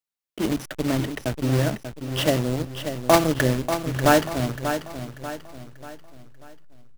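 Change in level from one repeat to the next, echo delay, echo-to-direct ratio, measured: -7.5 dB, 0.589 s, -8.0 dB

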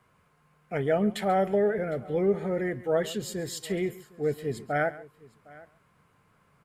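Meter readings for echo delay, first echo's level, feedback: 0.137 s, -18.5 dB, no steady repeat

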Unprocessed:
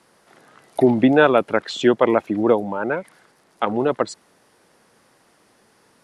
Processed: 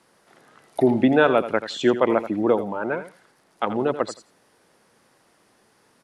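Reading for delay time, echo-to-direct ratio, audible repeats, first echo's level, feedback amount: 84 ms, -12.5 dB, 2, -12.5 dB, 16%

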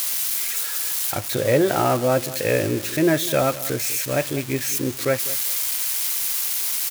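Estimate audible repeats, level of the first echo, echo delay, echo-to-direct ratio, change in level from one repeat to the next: 2, -16.5 dB, 0.198 s, -16.5 dB, -14.0 dB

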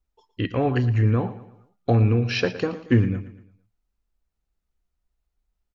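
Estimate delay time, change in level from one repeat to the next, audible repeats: 0.115 s, -7.5 dB, 3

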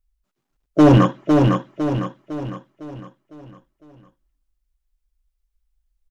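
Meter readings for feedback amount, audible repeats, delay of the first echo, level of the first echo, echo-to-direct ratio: 46%, 5, 0.505 s, -4.0 dB, -3.0 dB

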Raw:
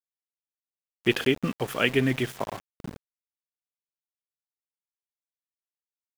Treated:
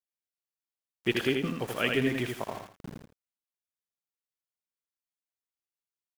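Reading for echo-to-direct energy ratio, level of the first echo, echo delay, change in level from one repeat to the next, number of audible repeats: -3.5 dB, -4.0 dB, 81 ms, -11.0 dB, 2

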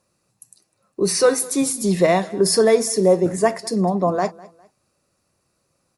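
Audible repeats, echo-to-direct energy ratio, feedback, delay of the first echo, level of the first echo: 2, -21.5 dB, 34%, 0.203 s, -22.0 dB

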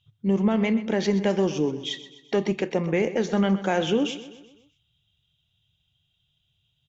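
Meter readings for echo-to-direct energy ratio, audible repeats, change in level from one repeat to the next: -13.5 dB, 4, -6.0 dB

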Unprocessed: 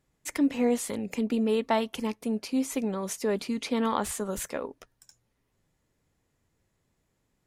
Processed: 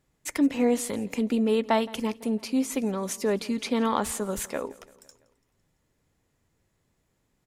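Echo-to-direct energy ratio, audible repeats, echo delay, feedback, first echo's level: -20.5 dB, 3, 0.168 s, 58%, -22.0 dB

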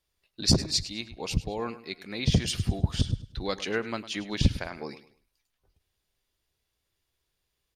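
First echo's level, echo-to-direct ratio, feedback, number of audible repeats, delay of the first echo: -15.0 dB, -14.5 dB, 29%, 2, 0.103 s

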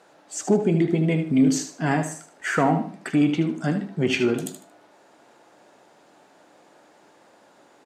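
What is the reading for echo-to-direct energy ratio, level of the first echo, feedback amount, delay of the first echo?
-9.0 dB, -9.5 dB, 25%, 76 ms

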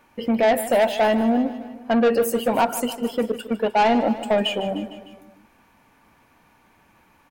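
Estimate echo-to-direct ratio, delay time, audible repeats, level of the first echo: -12.0 dB, 0.152 s, 4, -14.0 dB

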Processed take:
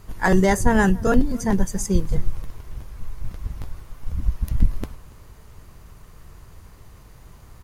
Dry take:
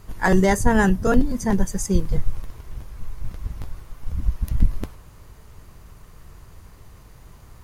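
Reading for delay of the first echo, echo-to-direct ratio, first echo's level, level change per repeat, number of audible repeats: 0.284 s, -23.5 dB, -23.5 dB, no steady repeat, 1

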